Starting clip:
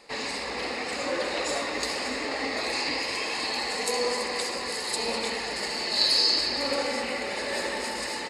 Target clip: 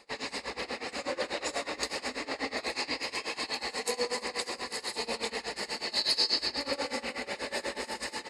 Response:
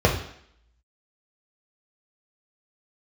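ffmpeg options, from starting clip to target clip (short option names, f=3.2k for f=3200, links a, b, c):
-af "tremolo=f=8.2:d=0.91,volume=-1.5dB"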